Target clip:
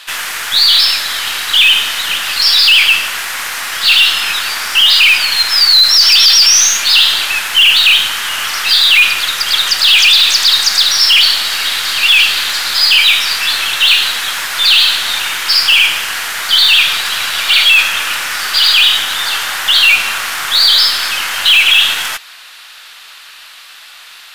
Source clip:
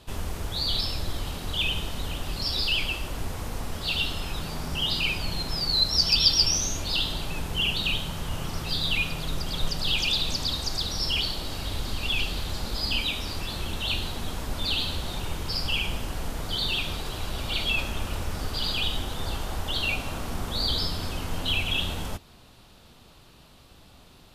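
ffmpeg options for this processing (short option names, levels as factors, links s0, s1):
-af "highpass=f=1700:t=q:w=2,apsyclip=14.1,aeval=exprs='1.12*(cos(1*acos(clip(val(0)/1.12,-1,1)))-cos(1*PI/2))+0.0447*(cos(8*acos(clip(val(0)/1.12,-1,1)))-cos(8*PI/2))':c=same,volume=0.75"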